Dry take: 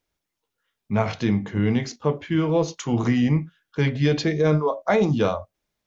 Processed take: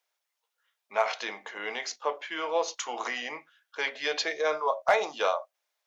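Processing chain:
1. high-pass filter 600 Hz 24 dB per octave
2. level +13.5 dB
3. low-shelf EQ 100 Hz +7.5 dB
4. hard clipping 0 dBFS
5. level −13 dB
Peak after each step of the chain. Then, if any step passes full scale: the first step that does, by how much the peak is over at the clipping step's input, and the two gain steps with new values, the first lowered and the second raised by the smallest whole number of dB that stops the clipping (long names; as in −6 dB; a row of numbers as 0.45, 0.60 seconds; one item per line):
−9.5, +4.0, +4.0, 0.0, −13.0 dBFS
step 2, 4.0 dB
step 2 +9.5 dB, step 5 −9 dB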